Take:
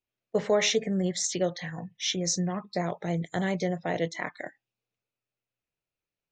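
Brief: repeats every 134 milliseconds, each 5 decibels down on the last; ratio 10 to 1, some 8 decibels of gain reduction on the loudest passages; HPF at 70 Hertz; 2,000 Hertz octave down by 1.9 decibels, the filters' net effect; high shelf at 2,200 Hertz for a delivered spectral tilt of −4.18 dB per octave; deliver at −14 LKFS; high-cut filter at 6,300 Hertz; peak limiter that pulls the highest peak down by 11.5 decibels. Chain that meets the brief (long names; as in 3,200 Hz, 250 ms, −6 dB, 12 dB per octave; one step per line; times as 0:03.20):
high-pass filter 70 Hz
low-pass filter 6,300 Hz
parametric band 2,000 Hz −4 dB
high-shelf EQ 2,200 Hz +3.5 dB
downward compressor 10 to 1, threshold −28 dBFS
brickwall limiter −29.5 dBFS
repeating echo 134 ms, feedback 56%, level −5 dB
level +23.5 dB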